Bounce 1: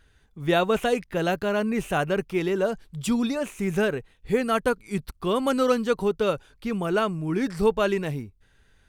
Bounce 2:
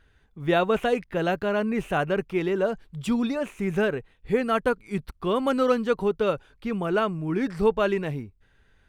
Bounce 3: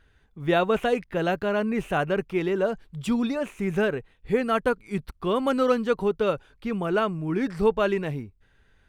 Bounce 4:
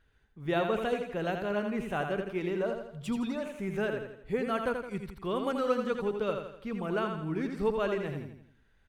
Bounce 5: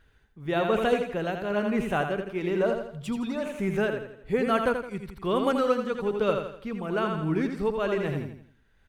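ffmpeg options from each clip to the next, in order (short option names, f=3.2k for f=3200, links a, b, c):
-af "bass=f=250:g=-1,treble=f=4k:g=-9"
-af anull
-af "aecho=1:1:83|166|249|332|415:0.501|0.226|0.101|0.0457|0.0206,volume=-8dB"
-af "tremolo=f=1.1:d=0.48,volume=7dB"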